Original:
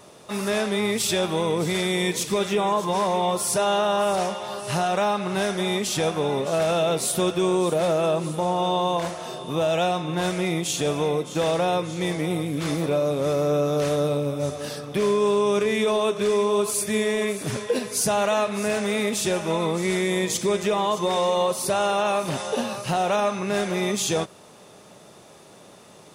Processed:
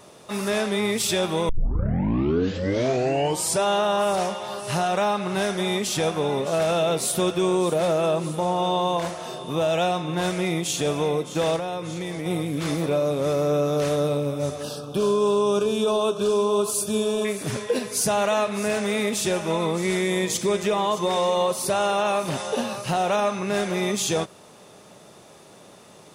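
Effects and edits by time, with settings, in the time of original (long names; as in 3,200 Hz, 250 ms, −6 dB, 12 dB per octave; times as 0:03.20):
0:01.49: tape start 2.16 s
0:11.56–0:12.26: downward compressor, threshold −26 dBFS
0:14.63–0:17.25: Butterworth band-reject 2,000 Hz, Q 1.7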